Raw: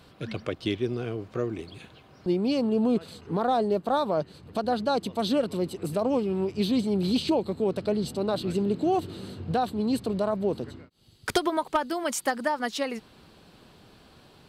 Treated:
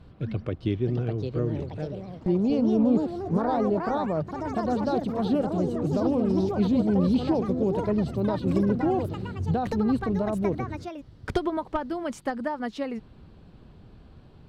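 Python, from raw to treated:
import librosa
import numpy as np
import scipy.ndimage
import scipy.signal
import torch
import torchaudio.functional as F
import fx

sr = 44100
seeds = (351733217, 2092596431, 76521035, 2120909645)

y = fx.riaa(x, sr, side='playback')
y = fx.echo_pitch(y, sr, ms=703, semitones=4, count=3, db_per_echo=-6.0)
y = F.gain(torch.from_numpy(y), -4.5).numpy()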